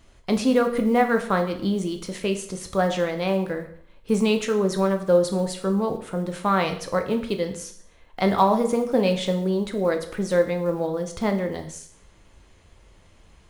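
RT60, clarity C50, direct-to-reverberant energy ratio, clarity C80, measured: 0.60 s, 11.0 dB, 5.0 dB, 14.0 dB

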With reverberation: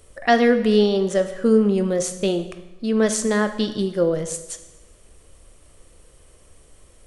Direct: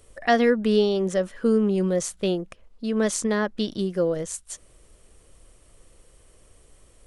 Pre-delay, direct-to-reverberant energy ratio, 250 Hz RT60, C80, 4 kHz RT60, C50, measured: 6 ms, 8.5 dB, 1.1 s, 13.5 dB, 0.90 s, 11.0 dB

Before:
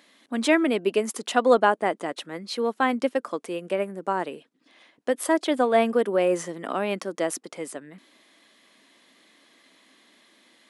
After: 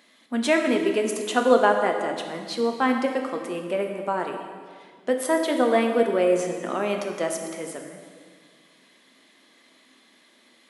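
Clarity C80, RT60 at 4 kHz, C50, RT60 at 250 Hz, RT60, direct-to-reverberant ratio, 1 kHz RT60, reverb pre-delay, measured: 6.5 dB, 1.7 s, 5.5 dB, 2.1 s, 1.8 s, 3.0 dB, 1.8 s, 3 ms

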